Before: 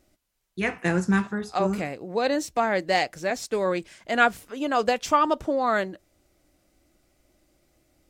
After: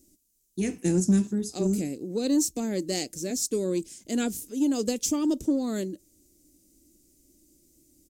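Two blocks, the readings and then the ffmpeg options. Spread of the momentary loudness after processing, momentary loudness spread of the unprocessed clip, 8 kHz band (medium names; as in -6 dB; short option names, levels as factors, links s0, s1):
8 LU, 8 LU, +9.0 dB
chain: -filter_complex "[0:a]firequalizer=gain_entry='entry(130,0);entry(280,9);entry(680,-15);entry(1200,-21);entry(2500,-9);entry(6500,12)':delay=0.05:min_phase=1,asplit=2[s0][s1];[s1]asoftclip=type=tanh:threshold=0.126,volume=0.501[s2];[s0][s2]amix=inputs=2:normalize=0,volume=0.562"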